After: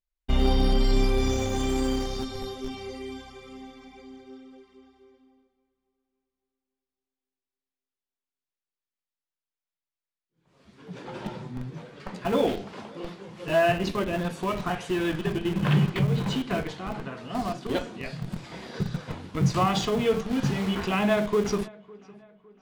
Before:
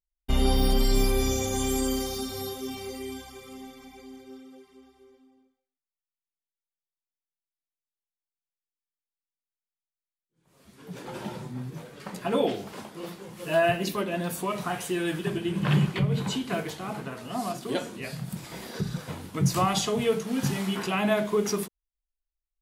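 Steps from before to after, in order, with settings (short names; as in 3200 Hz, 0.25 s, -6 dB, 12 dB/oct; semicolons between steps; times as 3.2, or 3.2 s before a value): LPF 4800 Hz 12 dB/oct; darkening echo 0.557 s, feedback 44%, low-pass 3400 Hz, level -22 dB; in parallel at -7 dB: Schmitt trigger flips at -27 dBFS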